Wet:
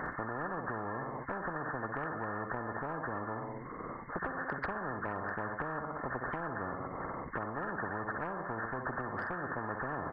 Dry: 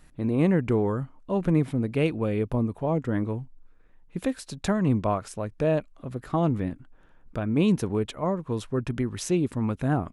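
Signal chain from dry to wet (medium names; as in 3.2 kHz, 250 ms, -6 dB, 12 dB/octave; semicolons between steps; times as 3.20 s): knee-point frequency compression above 1 kHz 4:1; high-pass 150 Hz 12 dB/octave; on a send: feedback delay 62 ms, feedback 42%, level -13.5 dB; on the sum: compression 2:1, threshold -40 dBFS, peak gain reduction 12 dB; spectrum-flattening compressor 10:1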